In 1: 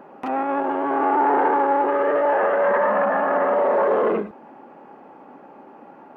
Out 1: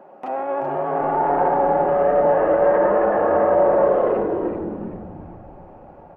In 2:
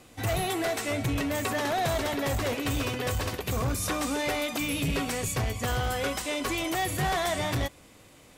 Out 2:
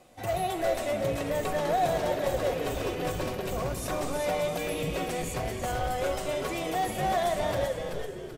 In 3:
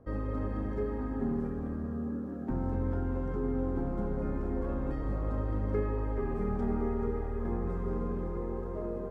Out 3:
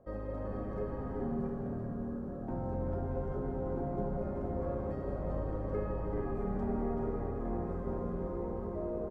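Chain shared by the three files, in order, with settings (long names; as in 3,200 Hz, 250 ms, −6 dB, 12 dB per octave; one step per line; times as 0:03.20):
parametric band 640 Hz +11 dB 0.8 octaves
on a send: echo with shifted repeats 383 ms, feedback 42%, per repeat −120 Hz, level −5.5 dB
on the sum: rectangular room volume 3,400 cubic metres, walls mixed, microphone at 0.97 metres
level −7.5 dB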